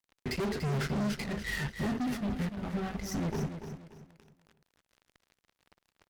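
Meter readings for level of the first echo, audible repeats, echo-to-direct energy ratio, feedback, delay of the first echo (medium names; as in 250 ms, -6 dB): -9.0 dB, 3, -8.5 dB, 32%, 290 ms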